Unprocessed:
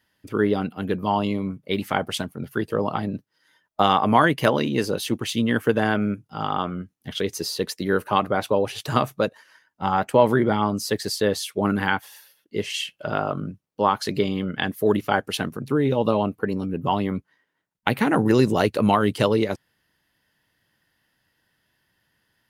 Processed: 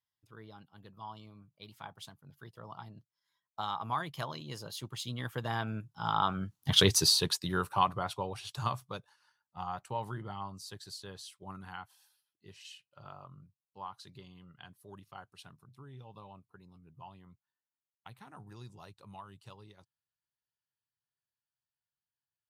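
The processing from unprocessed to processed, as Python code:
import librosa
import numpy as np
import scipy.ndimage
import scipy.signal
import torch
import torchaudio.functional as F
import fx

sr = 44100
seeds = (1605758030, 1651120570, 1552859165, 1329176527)

y = fx.doppler_pass(x, sr, speed_mps=19, closest_m=3.7, pass_at_s=6.82)
y = fx.graphic_eq(y, sr, hz=(125, 250, 500, 1000, 2000, 4000, 8000), db=(7, -9, -8, 7, -6, 5, 3))
y = y * 10.0 ** (5.5 / 20.0)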